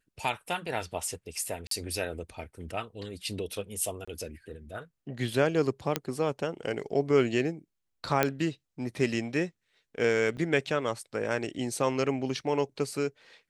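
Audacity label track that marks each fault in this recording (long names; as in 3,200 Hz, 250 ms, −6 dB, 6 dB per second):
1.670000	1.710000	drop-out 43 ms
4.050000	4.080000	drop-out 25 ms
5.960000	5.960000	click −10 dBFS
8.230000	8.230000	click −9 dBFS
10.370000	10.380000	drop-out 6.4 ms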